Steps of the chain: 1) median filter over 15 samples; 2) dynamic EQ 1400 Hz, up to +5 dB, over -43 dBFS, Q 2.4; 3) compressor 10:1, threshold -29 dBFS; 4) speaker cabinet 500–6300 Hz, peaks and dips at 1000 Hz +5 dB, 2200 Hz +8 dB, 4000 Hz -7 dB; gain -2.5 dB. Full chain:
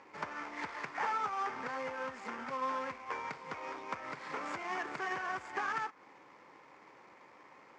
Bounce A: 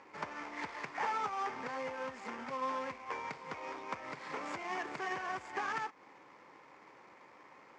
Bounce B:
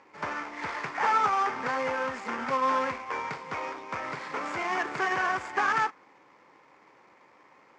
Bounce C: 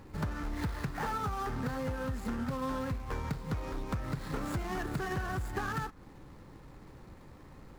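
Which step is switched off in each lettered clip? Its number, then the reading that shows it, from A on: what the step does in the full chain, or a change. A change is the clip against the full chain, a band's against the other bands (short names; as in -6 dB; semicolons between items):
2, momentary loudness spread change -1 LU; 3, mean gain reduction 6.5 dB; 4, 125 Hz band +20.5 dB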